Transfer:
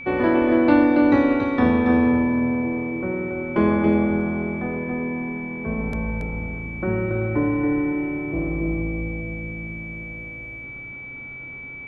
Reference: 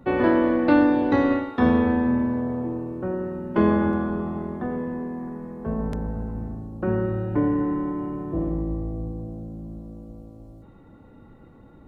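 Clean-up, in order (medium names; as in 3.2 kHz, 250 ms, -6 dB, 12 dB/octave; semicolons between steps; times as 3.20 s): de-hum 129.6 Hz, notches 28; band-stop 2.3 kHz, Q 30; inverse comb 279 ms -4.5 dB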